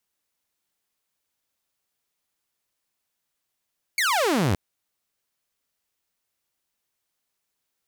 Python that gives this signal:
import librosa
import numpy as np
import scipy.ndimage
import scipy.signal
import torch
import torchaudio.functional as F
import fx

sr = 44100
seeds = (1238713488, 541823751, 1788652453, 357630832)

y = fx.laser_zap(sr, level_db=-17.0, start_hz=2300.0, end_hz=82.0, length_s=0.57, wave='saw')